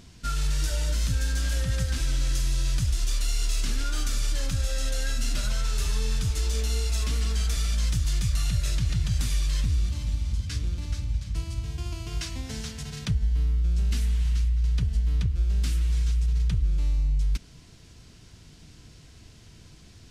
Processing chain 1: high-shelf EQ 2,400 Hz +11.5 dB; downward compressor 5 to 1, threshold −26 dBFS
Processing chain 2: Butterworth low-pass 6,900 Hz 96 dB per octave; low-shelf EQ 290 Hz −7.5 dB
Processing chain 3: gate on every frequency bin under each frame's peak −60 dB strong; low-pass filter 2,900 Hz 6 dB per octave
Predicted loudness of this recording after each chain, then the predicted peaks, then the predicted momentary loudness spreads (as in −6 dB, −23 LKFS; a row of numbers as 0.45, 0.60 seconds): −30.0, −33.5, −28.5 LKFS; −9.5, −18.5, −17.0 dBFS; 17, 5, 6 LU